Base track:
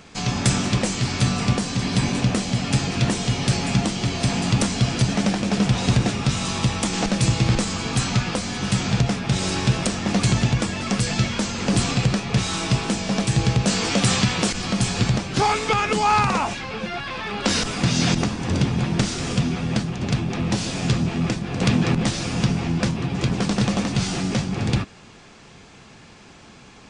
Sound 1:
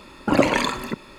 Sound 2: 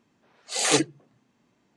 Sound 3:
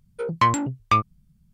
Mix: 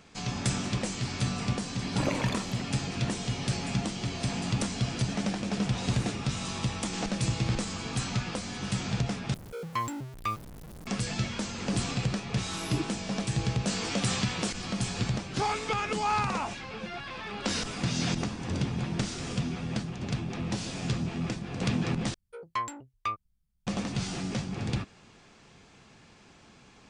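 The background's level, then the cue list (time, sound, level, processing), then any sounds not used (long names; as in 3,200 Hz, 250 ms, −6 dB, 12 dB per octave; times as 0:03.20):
base track −9.5 dB
0:01.68: mix in 1 −13.5 dB
0:05.35: mix in 2 −9 dB + downward compressor 2 to 1, threshold −46 dBFS
0:09.34: overwrite with 3 −14 dB + converter with a step at zero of −25 dBFS
0:12.00: mix in 2 −7 dB + brick-wall band-stop 410–9,900 Hz
0:22.14: overwrite with 3 −12 dB + parametric band 160 Hz −14.5 dB 1.6 octaves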